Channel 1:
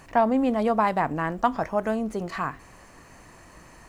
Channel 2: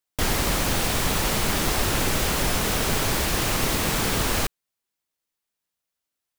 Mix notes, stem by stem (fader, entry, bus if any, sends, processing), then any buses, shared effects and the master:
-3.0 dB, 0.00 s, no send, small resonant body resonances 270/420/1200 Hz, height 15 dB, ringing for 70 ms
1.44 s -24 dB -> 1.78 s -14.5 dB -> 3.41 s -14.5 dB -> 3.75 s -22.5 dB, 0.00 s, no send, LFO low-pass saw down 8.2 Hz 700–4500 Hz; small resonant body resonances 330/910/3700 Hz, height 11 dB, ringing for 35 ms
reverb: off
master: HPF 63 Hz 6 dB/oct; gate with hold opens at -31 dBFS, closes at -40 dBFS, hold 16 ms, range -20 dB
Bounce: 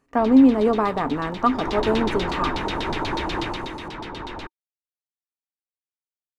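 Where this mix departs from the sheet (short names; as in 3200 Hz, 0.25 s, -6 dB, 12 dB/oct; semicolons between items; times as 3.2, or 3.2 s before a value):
stem 2 -24.0 dB -> -15.0 dB; master: missing HPF 63 Hz 6 dB/oct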